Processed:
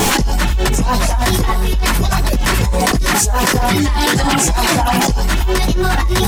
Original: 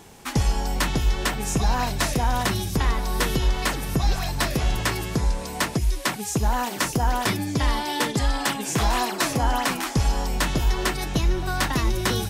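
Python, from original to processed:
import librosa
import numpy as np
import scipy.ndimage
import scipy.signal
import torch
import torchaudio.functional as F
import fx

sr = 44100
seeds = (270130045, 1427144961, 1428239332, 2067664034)

p1 = fx.dereverb_blind(x, sr, rt60_s=0.61)
p2 = np.clip(p1, -10.0 ** (-26.5 / 20.0), 10.0 ** (-26.5 / 20.0))
p3 = p1 + (p2 * 10.0 ** (-7.0 / 20.0))
p4 = fx.vibrato(p3, sr, rate_hz=2.9, depth_cents=23.0)
p5 = fx.chorus_voices(p4, sr, voices=6, hz=0.98, base_ms=19, depth_ms=3.0, mix_pct=50)
p6 = fx.stretch_grains(p5, sr, factor=0.51, grain_ms=178.0)
p7 = fx.quant_dither(p6, sr, seeds[0], bits=10, dither='none')
p8 = p7 + fx.echo_single(p7, sr, ms=78, db=-13.5, dry=0)
y = fx.env_flatten(p8, sr, amount_pct=100)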